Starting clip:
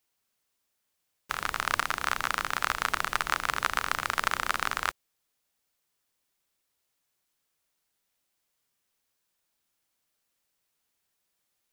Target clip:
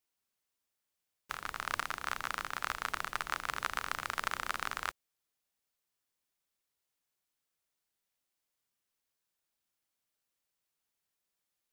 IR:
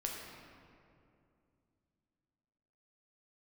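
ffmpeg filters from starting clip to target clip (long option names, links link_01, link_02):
-filter_complex "[0:a]asplit=3[link_01][link_02][link_03];[link_01]afade=type=out:start_time=1.36:duration=0.02[link_04];[link_02]agate=range=-33dB:threshold=-30dB:ratio=3:detection=peak,afade=type=in:start_time=1.36:duration=0.02,afade=type=out:start_time=3.46:duration=0.02[link_05];[link_03]afade=type=in:start_time=3.46:duration=0.02[link_06];[link_04][link_05][link_06]amix=inputs=3:normalize=0,volume=-7.5dB"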